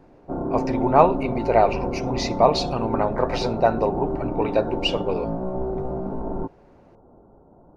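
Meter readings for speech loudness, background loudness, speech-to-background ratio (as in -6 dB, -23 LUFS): -23.0 LUFS, -28.5 LUFS, 5.5 dB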